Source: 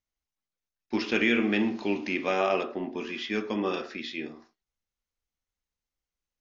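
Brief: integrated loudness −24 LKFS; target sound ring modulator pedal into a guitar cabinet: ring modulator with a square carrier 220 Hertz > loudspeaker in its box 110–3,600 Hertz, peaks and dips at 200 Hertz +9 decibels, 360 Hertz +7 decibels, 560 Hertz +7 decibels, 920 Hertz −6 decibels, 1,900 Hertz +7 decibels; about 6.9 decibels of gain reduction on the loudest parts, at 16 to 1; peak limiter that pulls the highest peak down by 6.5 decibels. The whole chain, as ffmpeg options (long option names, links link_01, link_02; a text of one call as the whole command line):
ffmpeg -i in.wav -af "acompressor=threshold=-27dB:ratio=16,alimiter=limit=-23.5dB:level=0:latency=1,aeval=exprs='val(0)*sgn(sin(2*PI*220*n/s))':channel_layout=same,highpass=110,equalizer=frequency=200:width_type=q:width=4:gain=9,equalizer=frequency=360:width_type=q:width=4:gain=7,equalizer=frequency=560:width_type=q:width=4:gain=7,equalizer=frequency=920:width_type=q:width=4:gain=-6,equalizer=frequency=1900:width_type=q:width=4:gain=7,lowpass=frequency=3600:width=0.5412,lowpass=frequency=3600:width=1.3066,volume=8dB" out.wav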